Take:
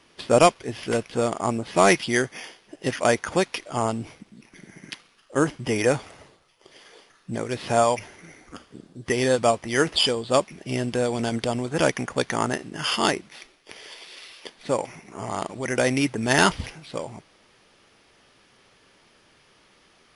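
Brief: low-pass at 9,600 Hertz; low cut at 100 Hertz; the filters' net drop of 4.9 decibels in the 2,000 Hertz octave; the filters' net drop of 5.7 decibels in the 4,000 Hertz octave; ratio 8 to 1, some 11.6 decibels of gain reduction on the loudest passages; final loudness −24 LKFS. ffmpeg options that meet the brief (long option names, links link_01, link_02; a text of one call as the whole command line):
ffmpeg -i in.wav -af "highpass=100,lowpass=9600,equalizer=frequency=2000:width_type=o:gain=-5,equalizer=frequency=4000:width_type=o:gain=-6,acompressor=threshold=-24dB:ratio=8,volume=7.5dB" out.wav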